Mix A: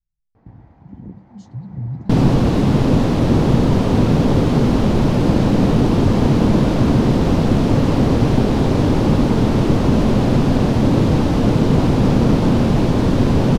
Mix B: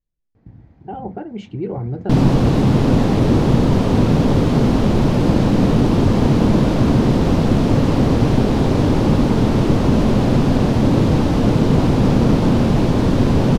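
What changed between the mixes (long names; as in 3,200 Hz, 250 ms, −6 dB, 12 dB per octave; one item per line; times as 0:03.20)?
speech: remove inverse Chebyshev band-stop filter 330–2,500 Hz, stop band 40 dB
first sound: add parametric band 930 Hz −10 dB 1.3 octaves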